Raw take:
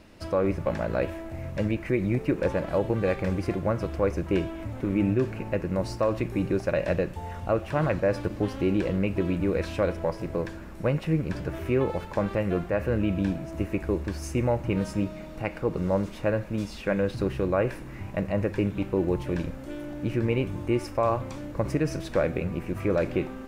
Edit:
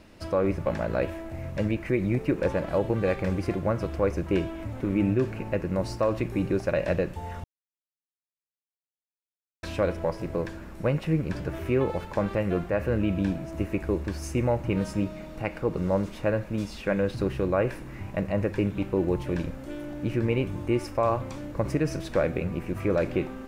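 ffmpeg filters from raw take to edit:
-filter_complex "[0:a]asplit=3[a][b][c];[a]atrim=end=7.44,asetpts=PTS-STARTPTS,afade=t=out:st=7.436:d=0.004:c=hsin[d];[b]atrim=start=7.44:end=9.63,asetpts=PTS-STARTPTS,volume=0[e];[c]atrim=start=9.63,asetpts=PTS-STARTPTS,afade=t=in:d=0.004:c=hsin[f];[d][e][f]concat=n=3:v=0:a=1"

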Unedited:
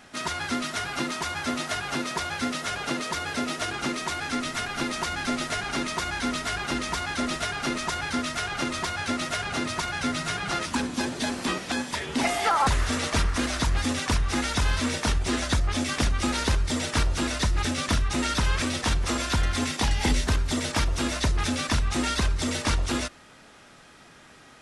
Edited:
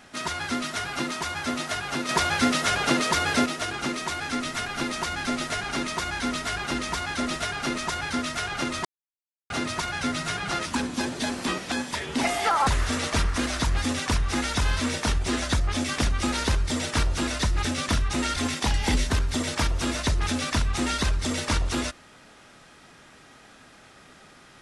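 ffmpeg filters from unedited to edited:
-filter_complex "[0:a]asplit=6[a][b][c][d][e][f];[a]atrim=end=2.092[g];[b]atrim=start=2.088:end=3.462,asetpts=PTS-STARTPTS,volume=6.5dB[h];[c]atrim=start=3.458:end=8.85,asetpts=PTS-STARTPTS,afade=t=out:st=5.388:d=0.004:c=hsin[i];[d]atrim=start=8.85:end=9.5,asetpts=PTS-STARTPTS,volume=0[j];[e]atrim=start=9.5:end=18.362,asetpts=PTS-STARTPTS,afade=t=in:d=0.004:c=hsin[k];[f]atrim=start=19.528[l];[g][h]acrossfade=d=0.004:c1=hsin:c2=hsin[m];[i][j][k]concat=n=3:v=0:a=1[n];[m][n]acrossfade=d=0.004:c1=hsin:c2=hsin[o];[o][l]acrossfade=d=0.004:c1=hsin:c2=hsin"

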